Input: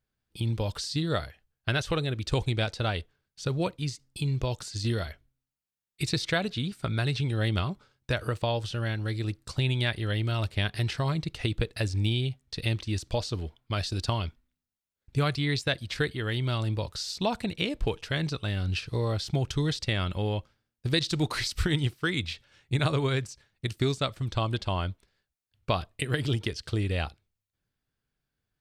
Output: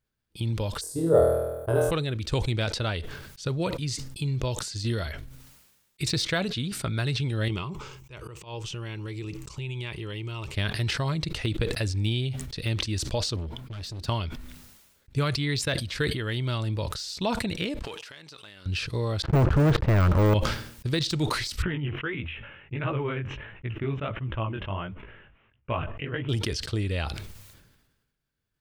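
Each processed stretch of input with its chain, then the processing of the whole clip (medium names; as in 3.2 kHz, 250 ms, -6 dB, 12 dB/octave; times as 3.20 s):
0.81–1.91 s: FFT filter 100 Hz 0 dB, 190 Hz -10 dB, 280 Hz 0 dB, 460 Hz +12 dB, 960 Hz +2 dB, 2.3 kHz -21 dB, 4.3 kHz -24 dB, 6.6 kHz -8 dB, 9.6 kHz +9 dB + flutter echo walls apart 4.2 m, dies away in 0.64 s
7.48–10.54 s: rippled EQ curve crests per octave 0.73, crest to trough 10 dB + compression, threshold -31 dBFS + slow attack 110 ms
13.36–14.07 s: peaking EQ 160 Hz +10.5 dB 2.6 oct + compression 3:1, threshold -33 dBFS + hard clipper -34 dBFS
17.82–18.66 s: partial rectifier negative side -3 dB + high-pass 990 Hz 6 dB/octave + compression 4:1, threshold -44 dBFS
19.22–20.34 s: low-pass 1.4 kHz 24 dB/octave + waveshaping leveller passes 5
21.62–26.29 s: elliptic low-pass 2.9 kHz + chorus 1.5 Hz, delay 15.5 ms, depth 7.1 ms
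whole clip: de-esser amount 75%; band-stop 740 Hz, Q 12; decay stretcher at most 47 dB/s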